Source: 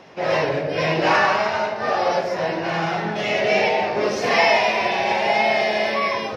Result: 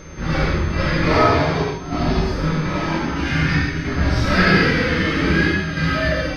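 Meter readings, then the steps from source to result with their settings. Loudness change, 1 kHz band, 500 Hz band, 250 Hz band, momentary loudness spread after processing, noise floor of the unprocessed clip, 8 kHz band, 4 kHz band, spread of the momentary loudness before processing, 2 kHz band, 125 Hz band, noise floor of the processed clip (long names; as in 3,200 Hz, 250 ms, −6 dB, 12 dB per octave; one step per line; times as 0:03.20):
+1.0 dB, −3.5 dB, −3.0 dB, +9.5 dB, 7 LU, −28 dBFS, can't be measured, −0.5 dB, 6 LU, +1.5 dB, +14.0 dB, −27 dBFS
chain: square-wave tremolo 0.52 Hz, depth 60%, duty 85%
frequency shifter −490 Hz
backwards echo 413 ms −17.5 dB
reverb whose tail is shaped and stops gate 170 ms flat, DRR −3.5 dB
steady tone 6,300 Hz −45 dBFS
level −2.5 dB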